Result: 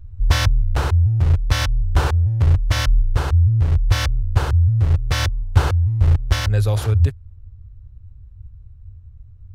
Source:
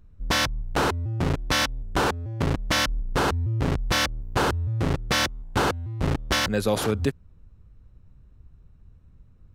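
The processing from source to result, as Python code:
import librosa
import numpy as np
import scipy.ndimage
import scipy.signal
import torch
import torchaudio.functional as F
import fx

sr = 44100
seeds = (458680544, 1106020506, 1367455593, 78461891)

y = fx.low_shelf_res(x, sr, hz=140.0, db=12.5, q=3.0)
y = fx.rider(y, sr, range_db=4, speed_s=0.5)
y = y * 10.0 ** (-3.5 / 20.0)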